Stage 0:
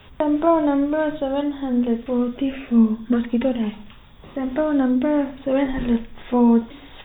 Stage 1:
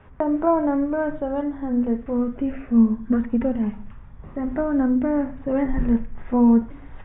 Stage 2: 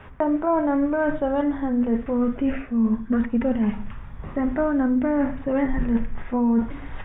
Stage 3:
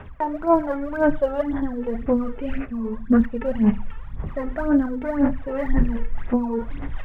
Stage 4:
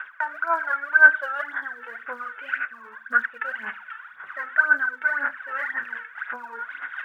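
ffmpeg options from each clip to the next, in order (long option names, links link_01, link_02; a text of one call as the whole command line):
ffmpeg -i in.wav -af "asubboost=boost=2.5:cutoff=210,lowpass=frequency=1900:width=0.5412,lowpass=frequency=1900:width=1.3066,volume=-2dB" out.wav
ffmpeg -i in.wav -af "tiltshelf=frequency=1300:gain=-3.5,areverse,acompressor=threshold=-27dB:ratio=6,areverse,volume=8.5dB" out.wav
ffmpeg -i in.wav -af "aphaser=in_gain=1:out_gain=1:delay=2.3:decay=0.7:speed=1.9:type=sinusoidal,volume=-4dB" out.wav
ffmpeg -i in.wav -af "highpass=frequency=1500:width_type=q:width=11" out.wav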